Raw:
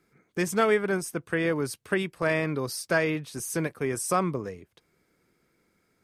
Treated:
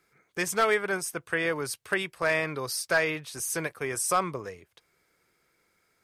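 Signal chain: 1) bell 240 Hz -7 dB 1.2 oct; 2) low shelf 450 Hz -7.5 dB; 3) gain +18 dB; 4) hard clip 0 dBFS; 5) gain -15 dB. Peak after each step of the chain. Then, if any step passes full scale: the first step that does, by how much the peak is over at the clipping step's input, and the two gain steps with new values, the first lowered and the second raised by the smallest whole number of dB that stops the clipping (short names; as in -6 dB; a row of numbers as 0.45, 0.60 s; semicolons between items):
-10.5, -11.5, +6.5, 0.0, -15.0 dBFS; step 3, 6.5 dB; step 3 +11 dB, step 5 -8 dB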